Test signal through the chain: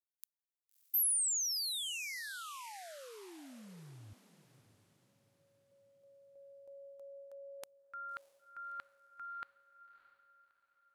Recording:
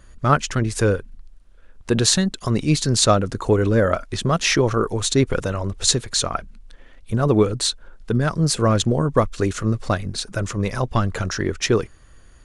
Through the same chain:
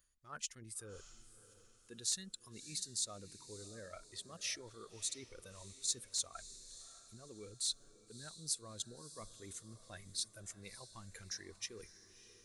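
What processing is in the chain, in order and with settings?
reversed playback
downward compressor 5 to 1, threshold −30 dBFS
reversed playback
noise reduction from a noise print of the clip's start 10 dB
first-order pre-emphasis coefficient 0.9
feedback delay with all-pass diffusion 621 ms, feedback 42%, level −14.5 dB
hard clipping −21.5 dBFS
level −2 dB

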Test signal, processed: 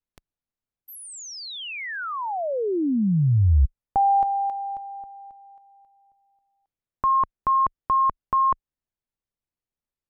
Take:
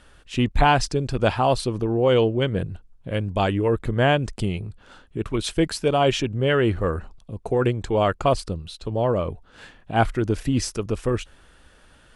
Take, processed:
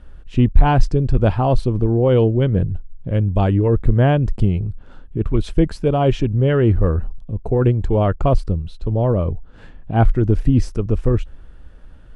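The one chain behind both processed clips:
spectral tilt −3.5 dB per octave
boost into a limiter −0.5 dB
level −1 dB

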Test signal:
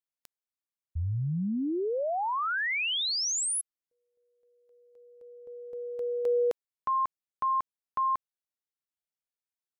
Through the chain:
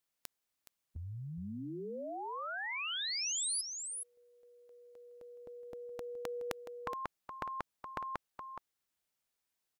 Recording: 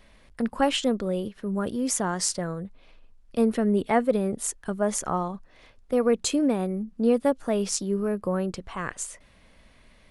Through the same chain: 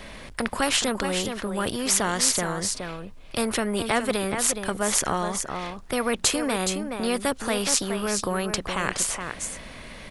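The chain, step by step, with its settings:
single-tap delay 420 ms −12.5 dB
every bin compressed towards the loudest bin 2 to 1
level +6 dB

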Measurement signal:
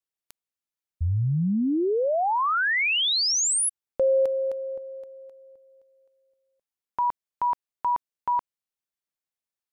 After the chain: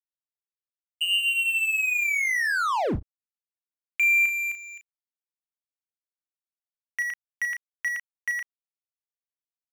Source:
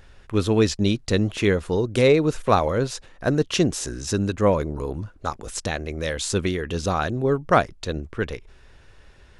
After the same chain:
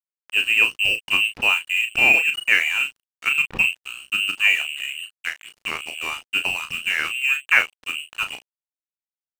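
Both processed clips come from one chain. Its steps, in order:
voice inversion scrambler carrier 2,900 Hz
dead-zone distortion −33 dBFS
double-tracking delay 35 ms −8 dB
level +1 dB

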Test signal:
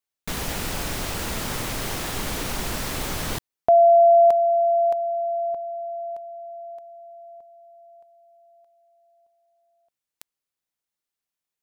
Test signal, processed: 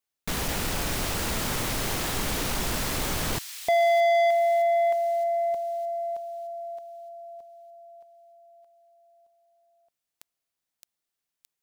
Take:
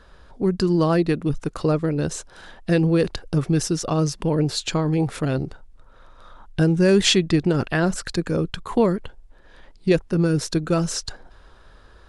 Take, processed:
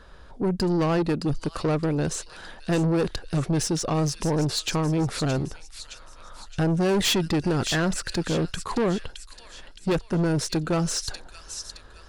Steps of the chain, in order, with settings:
delay with a high-pass on its return 617 ms, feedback 46%, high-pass 3,000 Hz, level −7.5 dB
soft clipping −20 dBFS
level +1 dB

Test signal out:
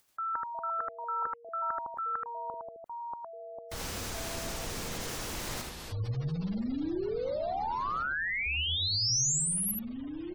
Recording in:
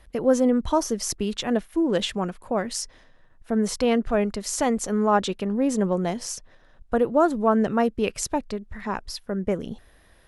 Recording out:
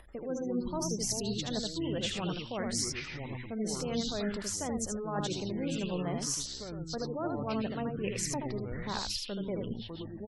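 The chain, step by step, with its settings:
reversed playback
downward compressor 8 to 1, threshold −28 dBFS
reversed playback
single-tap delay 78 ms −4 dB
upward compression, threshold −46 dBFS
dynamic equaliser 6,100 Hz, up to +5 dB, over −44 dBFS, Q 1.4
delay with pitch and tempo change per echo 88 ms, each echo −6 semitones, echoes 3, each echo −6 dB
gate on every frequency bin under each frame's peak −30 dB strong
level −5 dB

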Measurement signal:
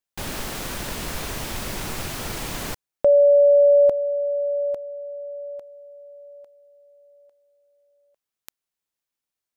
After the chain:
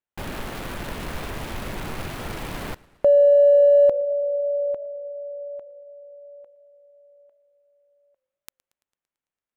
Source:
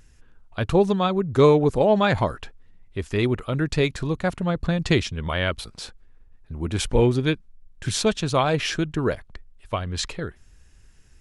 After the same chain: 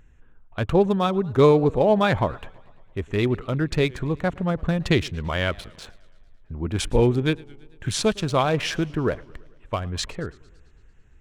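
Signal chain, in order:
adaptive Wiener filter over 9 samples
feedback echo with a swinging delay time 112 ms, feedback 63%, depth 162 cents, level −24 dB

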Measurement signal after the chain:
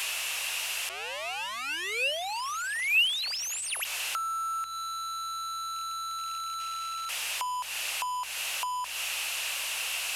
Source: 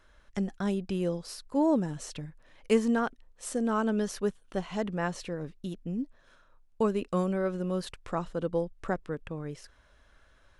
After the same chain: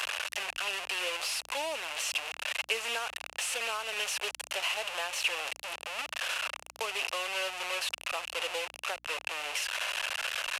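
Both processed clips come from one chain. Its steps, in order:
linear delta modulator 64 kbit/s, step −26.5 dBFS
high-pass filter 590 Hz 24 dB per octave
downward compressor, threshold −32 dBFS
parametric band 2,700 Hz +14 dB 0.42 octaves
mains hum 60 Hz, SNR 35 dB

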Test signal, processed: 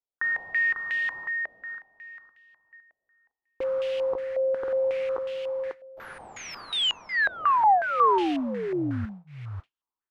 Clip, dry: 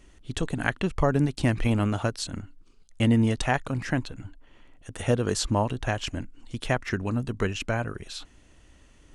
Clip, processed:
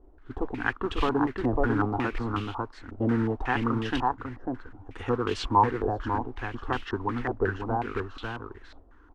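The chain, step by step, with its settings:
phaser with its sweep stopped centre 610 Hz, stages 6
single-tap delay 547 ms −3.5 dB
noise that follows the level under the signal 13 dB
low-pass on a step sequencer 5.5 Hz 640–2,900 Hz

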